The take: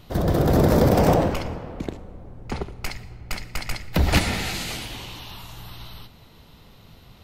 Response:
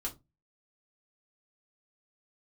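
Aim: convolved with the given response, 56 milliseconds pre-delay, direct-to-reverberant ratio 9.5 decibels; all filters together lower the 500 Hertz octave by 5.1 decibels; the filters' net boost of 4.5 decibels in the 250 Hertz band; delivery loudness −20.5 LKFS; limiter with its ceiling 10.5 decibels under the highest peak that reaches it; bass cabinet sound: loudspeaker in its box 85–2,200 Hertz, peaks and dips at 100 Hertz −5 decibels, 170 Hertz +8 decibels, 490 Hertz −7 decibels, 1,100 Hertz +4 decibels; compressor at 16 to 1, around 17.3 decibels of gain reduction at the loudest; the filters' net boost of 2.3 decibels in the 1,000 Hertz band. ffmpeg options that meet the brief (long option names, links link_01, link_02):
-filter_complex "[0:a]equalizer=frequency=250:width_type=o:gain=4,equalizer=frequency=500:width_type=o:gain=-5.5,equalizer=frequency=1000:width_type=o:gain=4,acompressor=threshold=-30dB:ratio=16,alimiter=level_in=3.5dB:limit=-24dB:level=0:latency=1,volume=-3.5dB,asplit=2[link_01][link_02];[1:a]atrim=start_sample=2205,adelay=56[link_03];[link_02][link_03]afir=irnorm=-1:irlink=0,volume=-10dB[link_04];[link_01][link_04]amix=inputs=2:normalize=0,highpass=frequency=85:width=0.5412,highpass=frequency=85:width=1.3066,equalizer=frequency=100:width_type=q:width=4:gain=-5,equalizer=frequency=170:width_type=q:width=4:gain=8,equalizer=frequency=490:width_type=q:width=4:gain=-7,equalizer=frequency=1100:width_type=q:width=4:gain=4,lowpass=frequency=2200:width=0.5412,lowpass=frequency=2200:width=1.3066,volume=18.5dB"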